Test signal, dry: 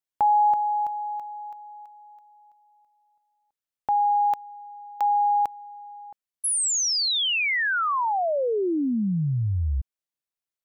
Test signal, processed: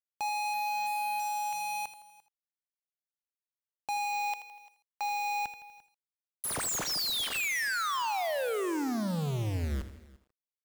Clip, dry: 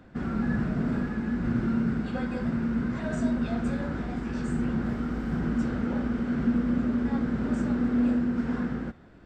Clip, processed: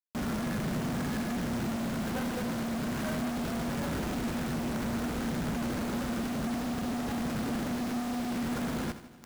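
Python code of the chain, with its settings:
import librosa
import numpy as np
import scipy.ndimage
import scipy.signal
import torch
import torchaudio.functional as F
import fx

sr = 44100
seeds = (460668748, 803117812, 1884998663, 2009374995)

y = scipy.ndimage.median_filter(x, 15, mode='constant')
y = scipy.signal.sosfilt(scipy.signal.butter(2, 52.0, 'highpass', fs=sr, output='sos'), y)
y = fx.high_shelf(y, sr, hz=2200.0, db=3.5)
y = fx.rider(y, sr, range_db=3, speed_s=0.5)
y = fx.quant_companded(y, sr, bits=2)
y = y + 10.0 ** (-22.0 / 20.0) * np.pad(y, (int(345 * sr / 1000.0), 0))[:len(y)]
y = fx.echo_crushed(y, sr, ms=81, feedback_pct=55, bits=9, wet_db=-12.0)
y = y * librosa.db_to_amplitude(-6.5)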